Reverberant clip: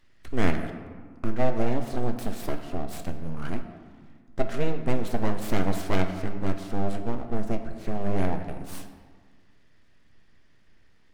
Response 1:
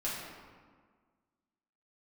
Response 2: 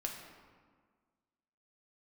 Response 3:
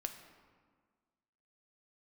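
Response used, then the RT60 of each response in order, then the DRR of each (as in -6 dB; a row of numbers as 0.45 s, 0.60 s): 3; 1.6 s, 1.6 s, 1.6 s; -8.0 dB, 0.5 dB, 5.5 dB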